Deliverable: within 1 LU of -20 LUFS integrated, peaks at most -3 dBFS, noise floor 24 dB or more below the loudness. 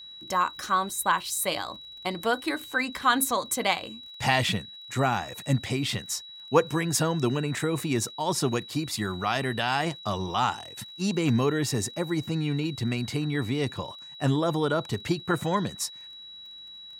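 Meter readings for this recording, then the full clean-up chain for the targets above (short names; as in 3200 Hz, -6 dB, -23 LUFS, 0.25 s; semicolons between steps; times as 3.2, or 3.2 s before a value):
ticks 27/s; steady tone 3900 Hz; tone level -42 dBFS; loudness -27.5 LUFS; peak -7.5 dBFS; loudness target -20.0 LUFS
-> de-click; notch 3900 Hz, Q 30; gain +7.5 dB; limiter -3 dBFS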